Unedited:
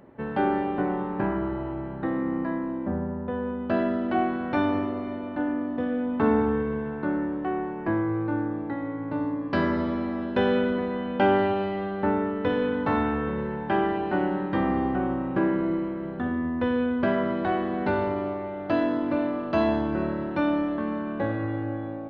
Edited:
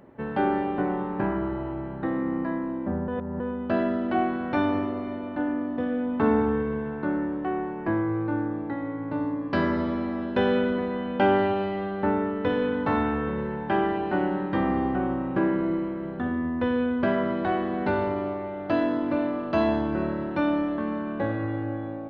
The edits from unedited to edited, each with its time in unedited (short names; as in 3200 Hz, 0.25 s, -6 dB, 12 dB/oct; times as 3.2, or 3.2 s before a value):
3.08–3.4 reverse